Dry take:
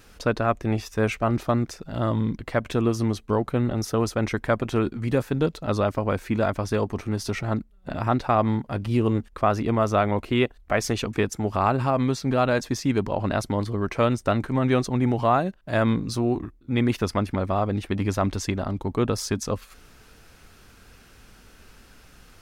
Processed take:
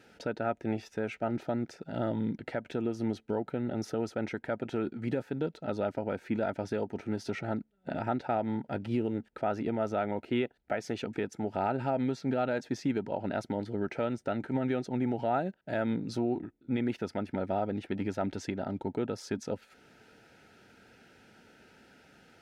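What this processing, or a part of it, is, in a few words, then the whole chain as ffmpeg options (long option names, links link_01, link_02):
PA system with an anti-feedback notch: -af "highpass=170,asuperstop=centerf=1100:order=8:qfactor=3.7,aemphasis=mode=reproduction:type=75kf,alimiter=limit=-18.5dB:level=0:latency=1:release=375,volume=-2dB"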